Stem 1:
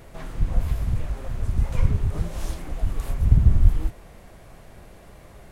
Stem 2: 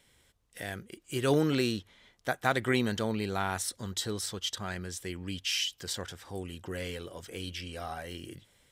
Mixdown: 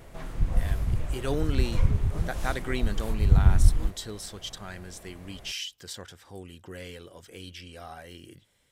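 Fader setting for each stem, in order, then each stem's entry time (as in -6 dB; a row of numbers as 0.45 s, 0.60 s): -2.5 dB, -4.0 dB; 0.00 s, 0.00 s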